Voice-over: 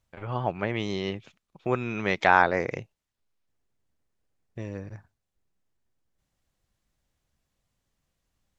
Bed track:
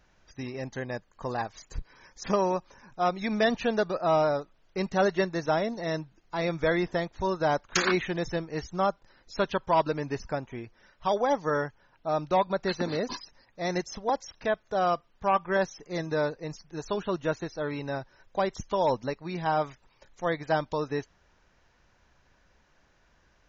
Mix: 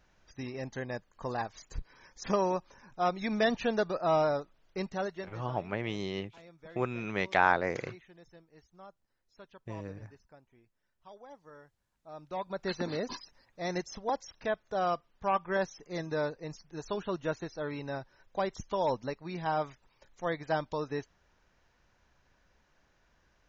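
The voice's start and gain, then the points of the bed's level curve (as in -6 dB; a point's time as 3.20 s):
5.10 s, -5.5 dB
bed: 4.71 s -3 dB
5.68 s -25.5 dB
11.86 s -25.5 dB
12.71 s -4.5 dB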